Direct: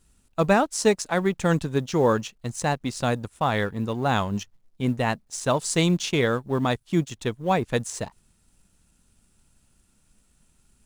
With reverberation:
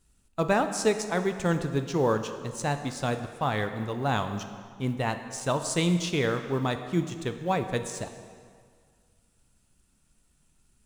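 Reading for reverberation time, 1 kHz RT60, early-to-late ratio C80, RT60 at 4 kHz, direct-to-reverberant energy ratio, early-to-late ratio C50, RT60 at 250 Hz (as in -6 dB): 1.9 s, 2.0 s, 10.0 dB, 1.6 s, 7.5 dB, 9.0 dB, 1.8 s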